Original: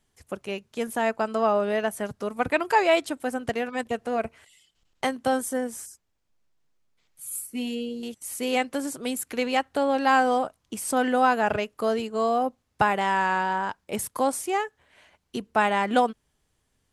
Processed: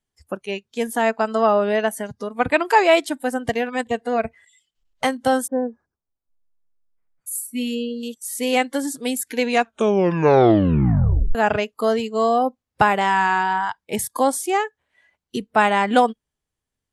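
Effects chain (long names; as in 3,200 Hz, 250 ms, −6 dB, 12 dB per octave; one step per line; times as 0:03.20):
noise reduction from a noise print of the clip's start 17 dB
0:01.90–0:02.35: downward compressor 2 to 1, threshold −33 dBFS, peak gain reduction 5 dB
0:05.46–0:07.26: low-pass filter 1,100 Hz → 1,900 Hz 24 dB per octave
0:09.40: tape stop 1.95 s
level +5.5 dB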